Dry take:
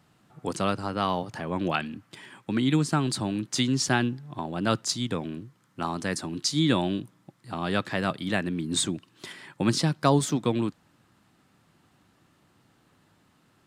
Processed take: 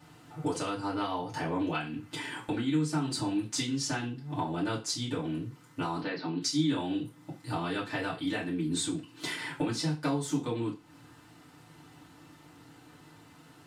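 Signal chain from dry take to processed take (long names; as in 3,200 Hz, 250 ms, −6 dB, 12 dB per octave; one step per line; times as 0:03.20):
downward compressor 5 to 1, threshold −39 dBFS, peak gain reduction 20.5 dB
0:05.99–0:06.41: Chebyshev band-pass filter 130–4,400 Hz, order 5
feedback delay network reverb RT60 0.31 s, low-frequency decay 0.85×, high-frequency decay 0.95×, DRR −8 dB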